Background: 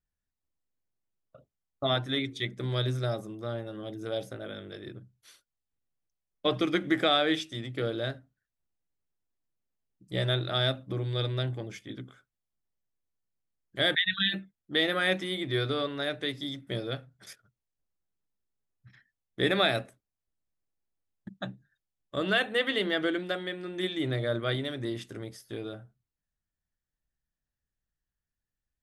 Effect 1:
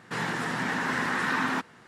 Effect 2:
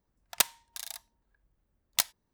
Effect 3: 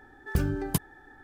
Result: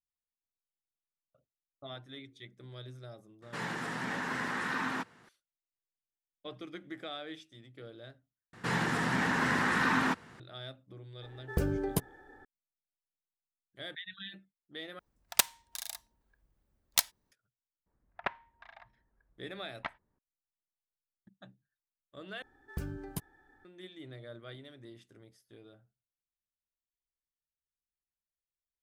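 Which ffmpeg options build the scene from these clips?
ffmpeg -i bed.wav -i cue0.wav -i cue1.wav -i cue2.wav -filter_complex "[1:a]asplit=2[link_01][link_02];[3:a]asplit=2[link_03][link_04];[2:a]asplit=2[link_05][link_06];[0:a]volume=-17.5dB[link_07];[link_02]lowshelf=frequency=110:gain=10[link_08];[link_03]equalizer=frequency=500:width=1.5:gain=10[link_09];[link_06]lowpass=frequency=2000:width=0.5412,lowpass=frequency=2000:width=1.3066[link_10];[link_07]asplit=4[link_11][link_12][link_13][link_14];[link_11]atrim=end=8.534[link_15];[link_08]atrim=end=1.87,asetpts=PTS-STARTPTS,volume=-1.5dB[link_16];[link_12]atrim=start=10.396:end=14.994[link_17];[link_05]atrim=end=2.33,asetpts=PTS-STARTPTS,volume=-0.5dB[link_18];[link_13]atrim=start=17.316:end=22.424[link_19];[link_04]atrim=end=1.23,asetpts=PTS-STARTPTS,volume=-12dB[link_20];[link_14]atrim=start=23.646[link_21];[link_01]atrim=end=1.87,asetpts=PTS-STARTPTS,volume=-7dB,afade=type=in:duration=0.004:curve=hsin,afade=type=out:start_time=1.866:duration=0.004:curve=hsin,adelay=3420[link_22];[link_09]atrim=end=1.23,asetpts=PTS-STARTPTS,volume=-5.5dB,afade=type=in:duration=0.004:curve=hsin,afade=type=out:start_time=1.226:duration=0.004:curve=hsin,adelay=494802S[link_23];[link_10]atrim=end=2.33,asetpts=PTS-STARTPTS,volume=-0.5dB,afade=type=in:duration=0.004:curve=hsin,afade=type=out:start_time=2.326:duration=0.004:curve=hsin,adelay=17860[link_24];[link_15][link_16]acrossfade=duration=0.004:curve1=hsin:curve2=hsin[link_25];[link_25][link_17]acrossfade=duration=0.004:curve1=hsin:curve2=hsin[link_26];[link_26][link_18]acrossfade=duration=0.004:curve1=hsin:curve2=hsin[link_27];[link_27][link_19]acrossfade=duration=0.004:curve1=hsin:curve2=hsin[link_28];[link_28][link_20]acrossfade=duration=0.004:curve1=hsin:curve2=hsin[link_29];[link_29][link_21]acrossfade=duration=0.004:curve1=hsin:curve2=hsin[link_30];[link_30][link_22][link_23][link_24]amix=inputs=4:normalize=0" out.wav

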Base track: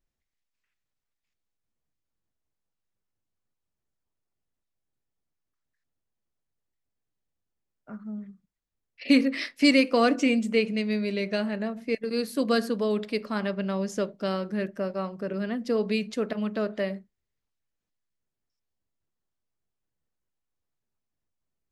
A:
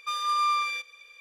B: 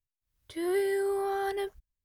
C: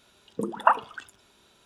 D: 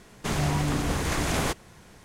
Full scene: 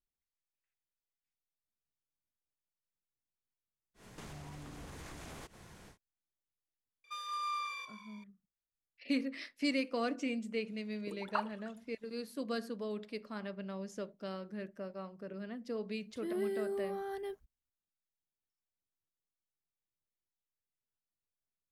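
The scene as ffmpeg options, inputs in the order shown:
ffmpeg -i bed.wav -i cue0.wav -i cue1.wav -i cue2.wav -i cue3.wav -filter_complex "[0:a]volume=-13.5dB[link_01];[4:a]acompressor=threshold=-42dB:ratio=6:attack=3.2:release=140:knee=1:detection=peak[link_02];[1:a]asplit=6[link_03][link_04][link_05][link_06][link_07][link_08];[link_04]adelay=166,afreqshift=-55,volume=-14dB[link_09];[link_05]adelay=332,afreqshift=-110,volume=-19.5dB[link_10];[link_06]adelay=498,afreqshift=-165,volume=-25dB[link_11];[link_07]adelay=664,afreqshift=-220,volume=-30.5dB[link_12];[link_08]adelay=830,afreqshift=-275,volume=-36.1dB[link_13];[link_03][link_09][link_10][link_11][link_12][link_13]amix=inputs=6:normalize=0[link_14];[3:a]aphaser=in_gain=1:out_gain=1:delay=4.1:decay=0.55:speed=1.6:type=triangular[link_15];[2:a]equalizer=frequency=230:width_type=o:width=1.6:gain=9.5[link_16];[link_02]atrim=end=2.04,asetpts=PTS-STARTPTS,volume=-4.5dB,afade=type=in:duration=0.1,afade=type=out:start_time=1.94:duration=0.1,adelay=3940[link_17];[link_14]atrim=end=1.2,asetpts=PTS-STARTPTS,volume=-12.5dB,afade=type=in:duration=0.004:curve=hsin,afade=type=out:start_time=1.196:duration=0.004:curve=hsin,adelay=7040[link_18];[link_15]atrim=end=1.65,asetpts=PTS-STARTPTS,volume=-17dB,afade=type=in:duration=0.004:curve=hsin,afade=type=out:start_time=1.646:duration=0.004:curve=hsin,adelay=10680[link_19];[link_16]atrim=end=2.04,asetpts=PTS-STARTPTS,volume=-13dB,afade=type=in:duration=0.004:curve=hsin,afade=type=out:start_time=2.036:duration=0.004:curve=hsin,adelay=15660[link_20];[link_01][link_17][link_18][link_19][link_20]amix=inputs=5:normalize=0" out.wav

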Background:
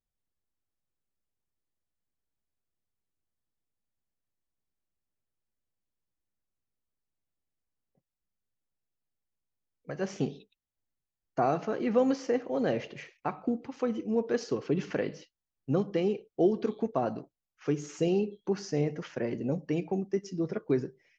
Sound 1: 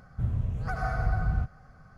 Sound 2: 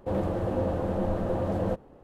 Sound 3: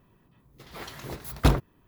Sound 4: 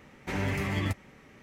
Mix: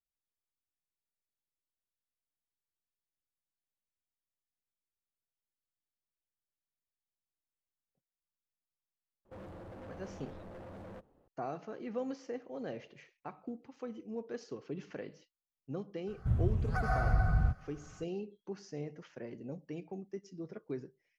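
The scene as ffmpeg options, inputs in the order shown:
ffmpeg -i bed.wav -i cue0.wav -i cue1.wav -filter_complex "[0:a]volume=-12.5dB[link_01];[2:a]volume=30dB,asoftclip=hard,volume=-30dB,atrim=end=2.03,asetpts=PTS-STARTPTS,volume=-16dB,afade=type=in:duration=0.004:curve=hsin,afade=type=out:start_time=2.026:duration=0.004:curve=hsin,adelay=9250[link_02];[1:a]atrim=end=1.97,asetpts=PTS-STARTPTS,volume=-1.5dB,afade=type=in:duration=0.004:curve=hsin,afade=type=out:start_time=1.966:duration=0.004:curve=hsin,adelay=16070[link_03];[link_01][link_02][link_03]amix=inputs=3:normalize=0" out.wav

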